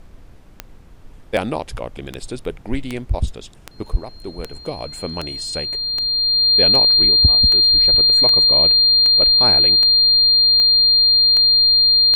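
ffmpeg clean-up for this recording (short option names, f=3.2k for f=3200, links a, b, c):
-af "adeclick=t=4,bandreject=f=4.2k:w=30,agate=range=-21dB:threshold=-32dB"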